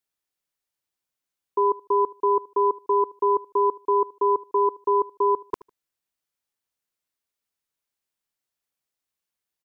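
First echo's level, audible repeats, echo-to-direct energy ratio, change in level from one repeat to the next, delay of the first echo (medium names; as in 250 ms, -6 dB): -21.5 dB, 2, -21.5 dB, -13.0 dB, 76 ms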